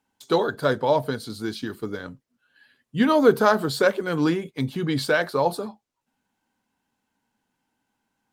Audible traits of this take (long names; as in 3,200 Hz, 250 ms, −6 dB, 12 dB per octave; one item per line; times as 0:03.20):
background noise floor −80 dBFS
spectral slope −4.5 dB per octave